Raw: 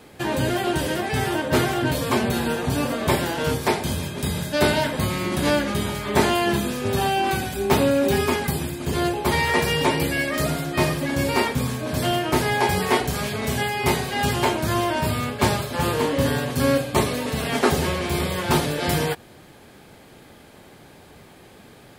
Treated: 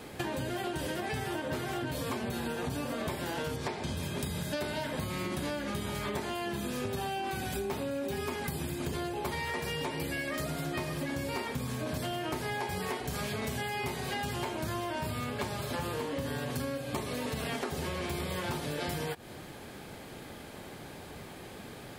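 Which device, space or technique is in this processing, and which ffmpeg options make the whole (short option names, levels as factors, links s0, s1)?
serial compression, peaks first: -filter_complex "[0:a]acompressor=threshold=0.0447:ratio=6,acompressor=threshold=0.0178:ratio=3,asettb=1/sr,asplit=3[s0][s1][s2];[s0]atrim=end=3.564[s3];[s1]atrim=start=3.56:end=3.97,asetpts=PTS-STARTPTS,afade=t=in:d=0.004:c=qsin,afade=t=out:st=0.406:d=0.004:c=qsin,lowpass=6900[s4];[s2]atrim=start=3.966[s5];[s3][s4]acrossfade=d=0.004:c1=hsin:c2=qsin[s6];[s6][s5]acrossfade=d=0.004:c1=qsin:c2=hsin,volume=1.19"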